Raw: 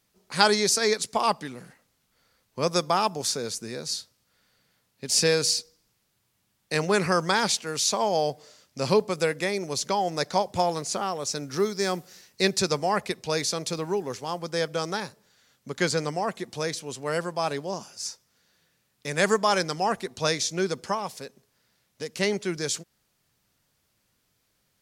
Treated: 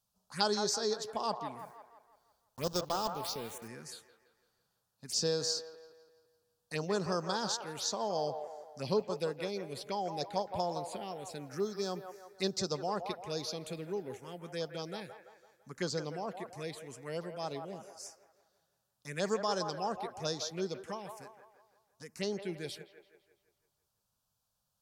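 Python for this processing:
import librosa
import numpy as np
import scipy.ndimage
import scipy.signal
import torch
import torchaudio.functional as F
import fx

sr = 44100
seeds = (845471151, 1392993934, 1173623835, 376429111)

y = fx.block_float(x, sr, bits=3, at=(1.59, 3.68))
y = fx.env_phaser(y, sr, low_hz=350.0, high_hz=2200.0, full_db=-21.5)
y = fx.echo_wet_bandpass(y, sr, ms=168, feedback_pct=48, hz=1000.0, wet_db=-6.0)
y = F.gain(torch.from_numpy(y), -9.0).numpy()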